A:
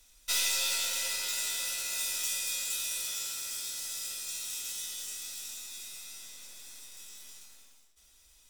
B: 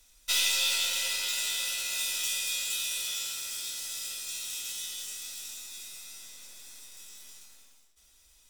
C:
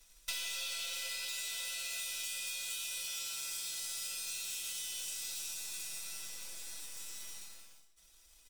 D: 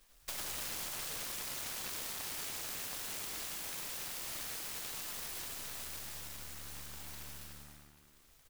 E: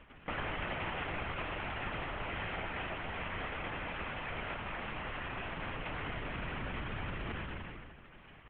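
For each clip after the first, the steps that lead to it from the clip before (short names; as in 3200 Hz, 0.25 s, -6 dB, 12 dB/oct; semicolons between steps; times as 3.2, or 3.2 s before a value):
dynamic EQ 3100 Hz, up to +7 dB, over -48 dBFS, Q 1.7
comb 6 ms, depth 87%; sample leveller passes 1; compressor 12:1, threshold -34 dBFS, peak gain reduction 15 dB; gain -3 dB
on a send: frequency-shifting echo 97 ms, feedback 56%, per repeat -73 Hz, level -5 dB; on the sum: FDN reverb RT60 2.1 s, high-frequency decay 0.95×, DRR 11 dB; noise-modulated delay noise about 1200 Hz, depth 0.39 ms; gain -2.5 dB
CVSD 16 kbps; air absorption 99 m; LPC vocoder at 8 kHz whisper; gain +10 dB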